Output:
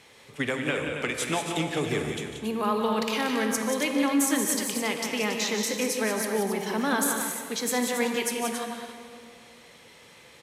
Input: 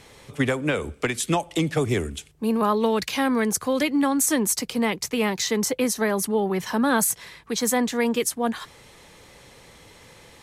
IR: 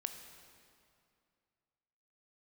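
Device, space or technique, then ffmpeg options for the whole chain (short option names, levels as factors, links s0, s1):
stadium PA: -filter_complex "[0:a]highpass=f=190:p=1,equalizer=f=2600:t=o:w=1.2:g=4,aecho=1:1:148.7|180.8|277:0.282|0.447|0.355[s0];[1:a]atrim=start_sample=2205[s1];[s0][s1]afir=irnorm=-1:irlink=0,volume=0.668"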